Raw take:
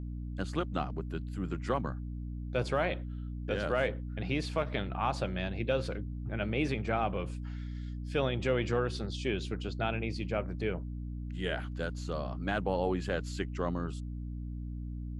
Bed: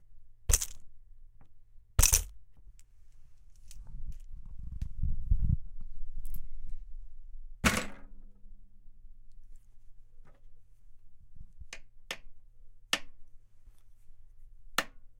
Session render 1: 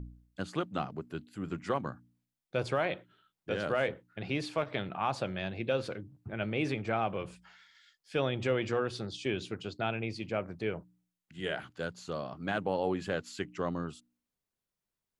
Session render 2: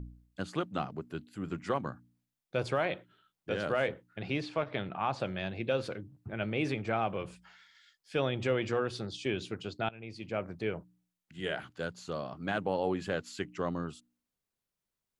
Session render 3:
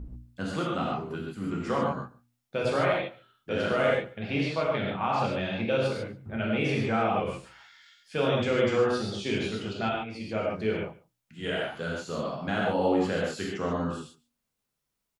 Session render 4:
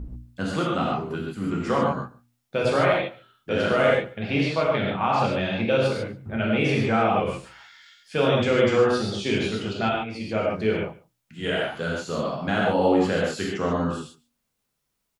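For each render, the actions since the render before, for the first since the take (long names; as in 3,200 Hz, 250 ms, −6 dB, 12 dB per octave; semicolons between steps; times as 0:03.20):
hum removal 60 Hz, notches 5
0:04.40–0:05.20: high-frequency loss of the air 90 metres; 0:09.89–0:10.44: fade in, from −20.5 dB
single-tap delay 142 ms −23 dB; reverb whose tail is shaped and stops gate 170 ms flat, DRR −4.5 dB
level +5 dB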